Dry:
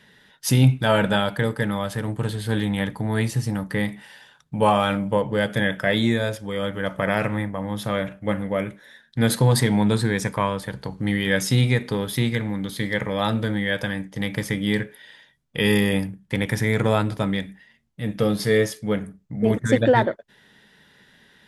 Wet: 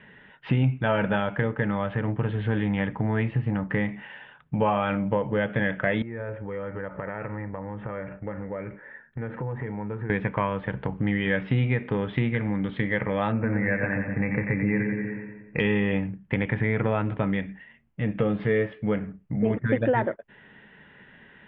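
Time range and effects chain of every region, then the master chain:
6.02–10.1 LPF 2100 Hz 24 dB/oct + compressor 4:1, threshold -35 dBFS + comb 2.2 ms, depth 32%
13.32–15.6 brick-wall FIR low-pass 2700 Hz + split-band echo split 640 Hz, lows 0.121 s, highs 89 ms, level -6 dB
whole clip: steep low-pass 2900 Hz 48 dB/oct; compressor 2.5:1, threshold -28 dBFS; gain +4 dB

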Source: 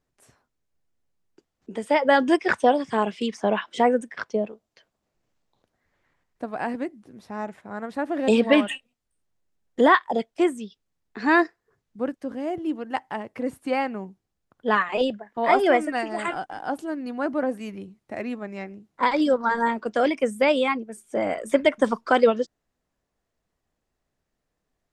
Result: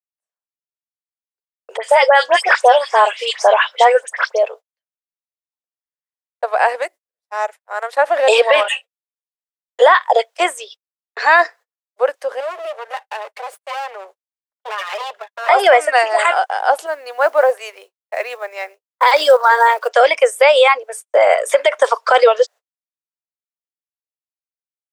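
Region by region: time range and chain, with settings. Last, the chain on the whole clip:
1.77–4.43 HPF 500 Hz + dispersion highs, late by 67 ms, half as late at 2300 Hz
6.82–7.93 HPF 440 Hz 6 dB/oct + transient shaper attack -5 dB, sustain -10 dB + high shelf 6700 Hz +11 dB
8.63–9.82 high shelf 6000 Hz -3 dB + ensemble effect
12.4–15.49 minimum comb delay 4.9 ms + compressor, threshold -36 dBFS
16.86–19.9 block floating point 7-bit + three-band expander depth 40%
whole clip: gate -43 dBFS, range -50 dB; steep high-pass 490 Hz 48 dB/oct; maximiser +16.5 dB; gain -1 dB

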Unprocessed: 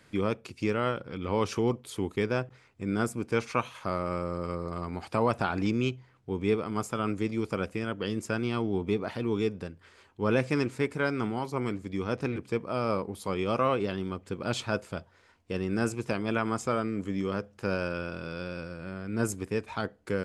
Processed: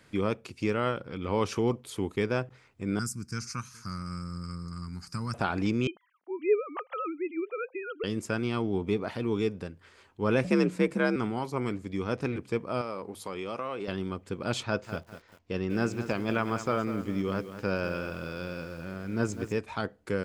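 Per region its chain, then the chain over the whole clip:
2.99–5.34 EQ curve 180 Hz 0 dB, 640 Hz -28 dB, 1400 Hz -4 dB, 3400 Hz -17 dB, 5000 Hz +10 dB, 9900 Hz +4 dB + echo 0.42 s -23 dB
5.87–8.04 sine-wave speech + Chebyshev high-pass 420 Hz
10.44–11.16 low shelf 190 Hz +10.5 dB + frequency shift +53 Hz
12.81–13.88 low shelf 180 Hz -11 dB + notches 50/100/150 Hz + compressor 3:1, threshold -32 dBFS
14.63–19.58 LPF 6600 Hz 24 dB/oct + lo-fi delay 0.199 s, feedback 35%, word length 8-bit, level -11 dB
whole clip: dry

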